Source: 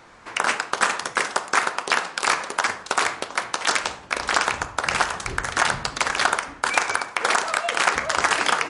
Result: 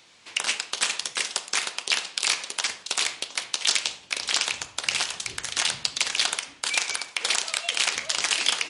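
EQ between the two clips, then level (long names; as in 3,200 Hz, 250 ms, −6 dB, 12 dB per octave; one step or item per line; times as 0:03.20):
high-pass filter 82 Hz
high shelf with overshoot 2,100 Hz +13 dB, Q 1.5
−11.5 dB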